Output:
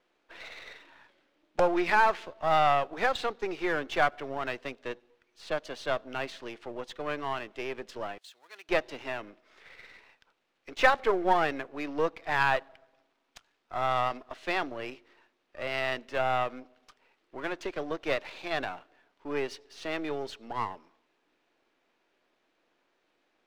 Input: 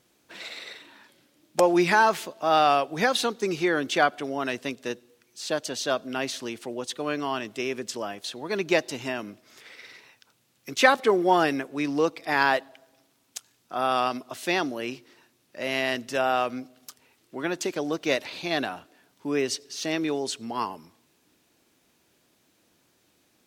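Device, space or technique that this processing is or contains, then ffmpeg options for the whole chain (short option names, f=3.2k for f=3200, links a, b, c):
crystal radio: -filter_complex "[0:a]highpass=400,lowpass=2.6k,aeval=exprs='if(lt(val(0),0),0.447*val(0),val(0))':c=same,asettb=1/sr,asplit=3[a][b][c];[a]atrim=end=8.184[d];[b]atrim=start=8.18:end=8.69,asetpts=PTS-STARTPTS,afade=t=in:d=0.004:c=qsin,afade=t=out:st=0.506:d=0.004:c=qsin,aderivative[e];[c]atrim=start=8.686[f];[d][e]acrossfade=d=0.004:c1=hsin:c2=qsin[g];[g][f]acrossfade=d=0.004:c1=qsin:c2=hsin"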